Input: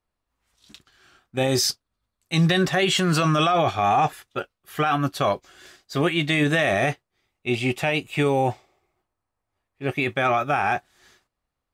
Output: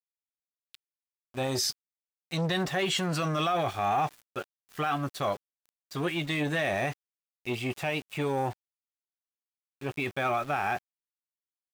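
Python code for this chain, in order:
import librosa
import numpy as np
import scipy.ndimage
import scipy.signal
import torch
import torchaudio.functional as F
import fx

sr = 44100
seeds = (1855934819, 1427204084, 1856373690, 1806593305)

y = np.where(np.abs(x) >= 10.0 ** (-36.0 / 20.0), x, 0.0)
y = fx.transformer_sat(y, sr, knee_hz=450.0)
y = y * 10.0 ** (-6.5 / 20.0)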